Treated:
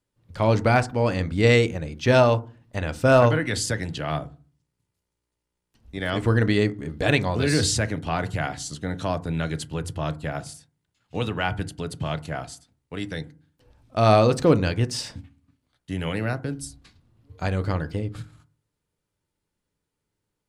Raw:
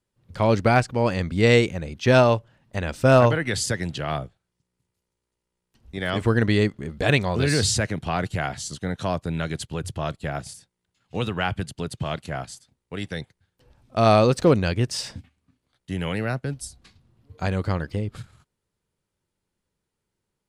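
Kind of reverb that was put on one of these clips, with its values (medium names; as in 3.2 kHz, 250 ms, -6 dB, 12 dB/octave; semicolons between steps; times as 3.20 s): FDN reverb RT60 0.37 s, low-frequency decay 1.55×, high-frequency decay 0.35×, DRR 11 dB; trim -1 dB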